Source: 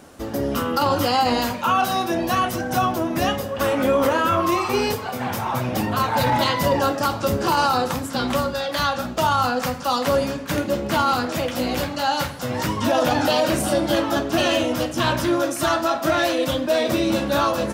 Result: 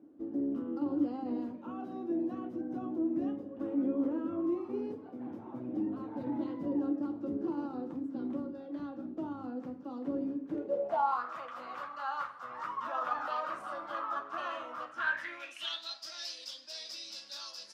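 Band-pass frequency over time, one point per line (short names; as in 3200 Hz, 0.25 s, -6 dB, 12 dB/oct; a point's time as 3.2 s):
band-pass, Q 8.8
10.46 s 300 Hz
11.23 s 1200 Hz
14.87 s 1200 Hz
16.05 s 5000 Hz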